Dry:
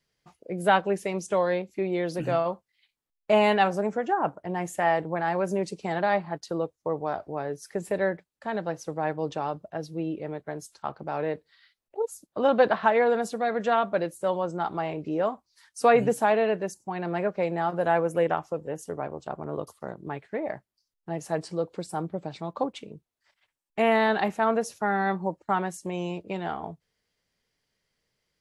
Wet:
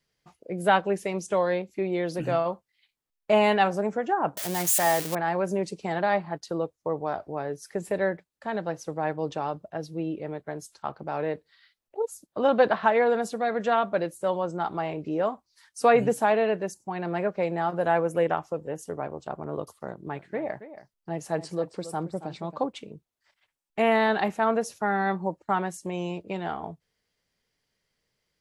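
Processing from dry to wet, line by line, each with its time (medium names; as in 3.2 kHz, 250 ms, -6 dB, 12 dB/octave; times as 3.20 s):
4.37–5.15 s: zero-crossing glitches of -18 dBFS
19.87–22.58 s: delay 275 ms -13.5 dB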